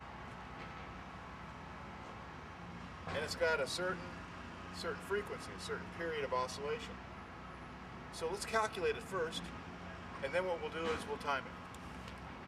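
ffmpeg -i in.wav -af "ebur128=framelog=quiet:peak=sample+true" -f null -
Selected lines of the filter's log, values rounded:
Integrated loudness:
  I:         -41.4 LUFS
  Threshold: -51.4 LUFS
Loudness range:
  LRA:         3.1 LU
  Threshold: -60.9 LUFS
  LRA low:   -42.4 LUFS
  LRA high:  -39.3 LUFS
Sample peak:
  Peak:      -19.1 dBFS
True peak:
  Peak:      -19.1 dBFS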